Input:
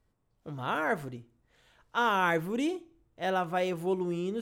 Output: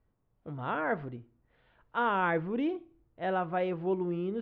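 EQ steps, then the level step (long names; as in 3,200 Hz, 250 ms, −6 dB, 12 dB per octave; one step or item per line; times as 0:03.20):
Gaussian smoothing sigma 1.9 samples
high-frequency loss of the air 270 metres
0.0 dB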